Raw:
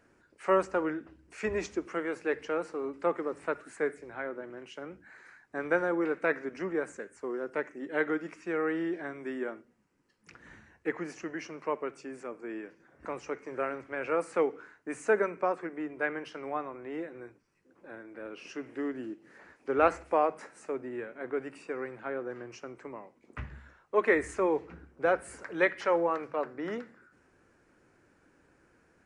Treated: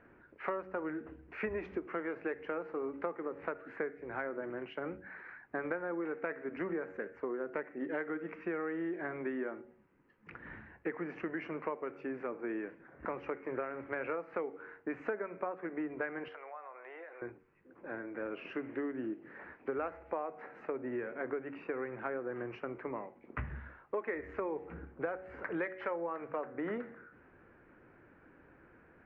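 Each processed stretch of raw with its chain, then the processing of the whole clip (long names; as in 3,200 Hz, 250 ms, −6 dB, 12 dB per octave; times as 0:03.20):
0:16.28–0:17.22: high-pass filter 570 Hz 24 dB per octave + downward compressor 4 to 1, threshold −50 dBFS
whole clip: low-pass filter 2,400 Hz 24 dB per octave; hum removal 93.26 Hz, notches 9; downward compressor 12 to 1, threshold −38 dBFS; level +4.5 dB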